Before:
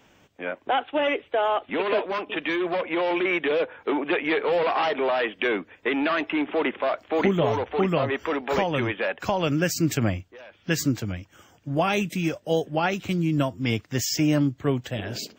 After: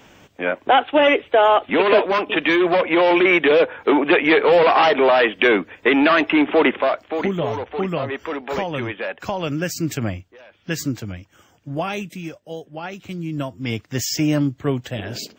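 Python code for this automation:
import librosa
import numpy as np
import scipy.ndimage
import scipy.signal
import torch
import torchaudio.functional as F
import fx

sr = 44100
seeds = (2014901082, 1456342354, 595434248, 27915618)

y = fx.gain(x, sr, db=fx.line((6.72, 9.0), (7.19, -0.5), (11.71, -0.5), (12.59, -9.5), (14.02, 2.5)))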